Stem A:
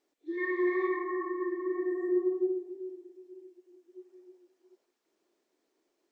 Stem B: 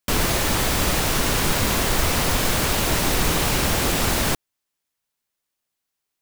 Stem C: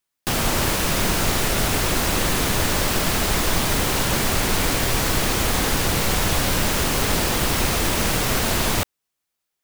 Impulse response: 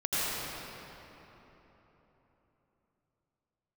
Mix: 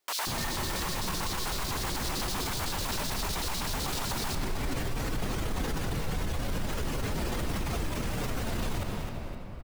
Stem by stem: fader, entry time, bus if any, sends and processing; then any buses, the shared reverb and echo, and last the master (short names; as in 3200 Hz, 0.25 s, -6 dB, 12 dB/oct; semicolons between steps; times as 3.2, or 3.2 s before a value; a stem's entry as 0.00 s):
+1.0 dB, 0.00 s, no send, no echo send, HPF 710 Hz
-5.5 dB, 0.00 s, send -21 dB, no echo send, LFO high-pass square 7.9 Hz 880–4200 Hz
-5.0 dB, 0.00 s, send -17.5 dB, echo send -13 dB, spectral contrast raised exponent 1.6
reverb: on, RT60 3.9 s, pre-delay 77 ms
echo: feedback echo 0.259 s, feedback 37%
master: limiter -23 dBFS, peak gain reduction 13 dB